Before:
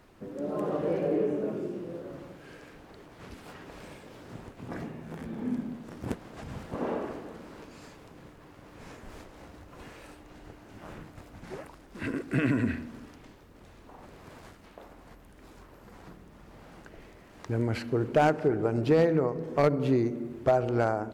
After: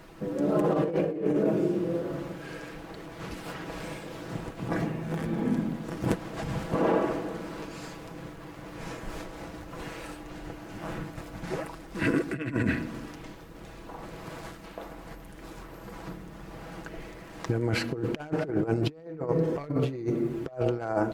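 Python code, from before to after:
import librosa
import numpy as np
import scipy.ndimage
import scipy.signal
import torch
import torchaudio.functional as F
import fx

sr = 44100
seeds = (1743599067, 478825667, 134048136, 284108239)

y = x + 0.5 * np.pad(x, (int(6.1 * sr / 1000.0), 0))[:len(x)]
y = fx.over_compress(y, sr, threshold_db=-30.0, ratio=-0.5)
y = y * 10.0 ** (3.5 / 20.0)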